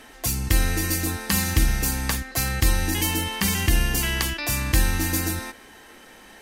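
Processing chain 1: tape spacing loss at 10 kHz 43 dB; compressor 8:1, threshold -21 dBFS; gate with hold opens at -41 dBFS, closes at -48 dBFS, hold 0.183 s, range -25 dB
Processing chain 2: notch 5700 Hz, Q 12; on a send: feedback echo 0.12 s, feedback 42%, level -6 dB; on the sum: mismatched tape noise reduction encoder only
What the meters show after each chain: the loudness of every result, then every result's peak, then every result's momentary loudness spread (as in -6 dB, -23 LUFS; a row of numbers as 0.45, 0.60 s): -29.5, -22.5 LUFS; -13.0, -6.5 dBFS; 3, 11 LU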